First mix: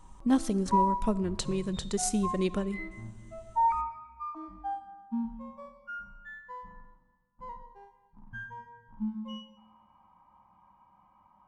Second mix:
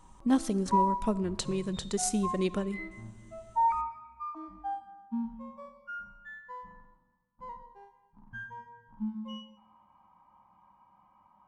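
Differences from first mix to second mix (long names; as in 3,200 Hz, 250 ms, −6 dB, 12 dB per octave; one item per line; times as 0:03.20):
background: send −6.5 dB
master: add low-shelf EQ 83 Hz −6.5 dB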